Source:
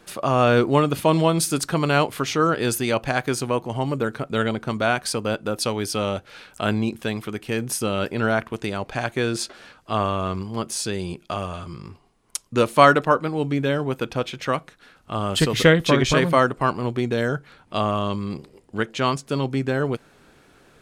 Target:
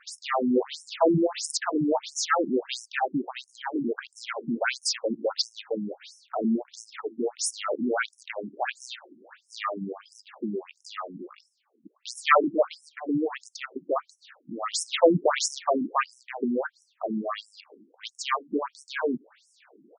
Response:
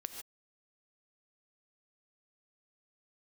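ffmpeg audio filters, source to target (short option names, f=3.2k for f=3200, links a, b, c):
-af "aeval=exprs='clip(val(0),-1,0.0562)':c=same,asetrate=45938,aresample=44100,afftfilt=real='re*between(b*sr/1024,240*pow(7600/240,0.5+0.5*sin(2*PI*1.5*pts/sr))/1.41,240*pow(7600/240,0.5+0.5*sin(2*PI*1.5*pts/sr))*1.41)':imag='im*between(b*sr/1024,240*pow(7600/240,0.5+0.5*sin(2*PI*1.5*pts/sr))/1.41,240*pow(7600/240,0.5+0.5*sin(2*PI*1.5*pts/sr))*1.41)':win_size=1024:overlap=0.75,volume=4.5dB"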